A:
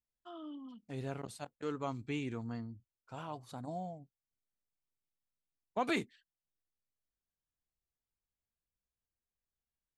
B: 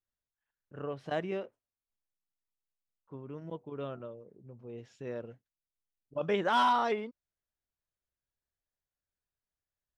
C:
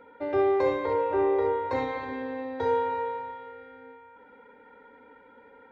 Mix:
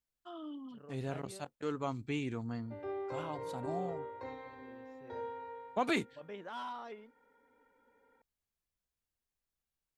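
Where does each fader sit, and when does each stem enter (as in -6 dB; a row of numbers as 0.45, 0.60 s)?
+1.5, -16.5, -16.5 dB; 0.00, 0.00, 2.50 s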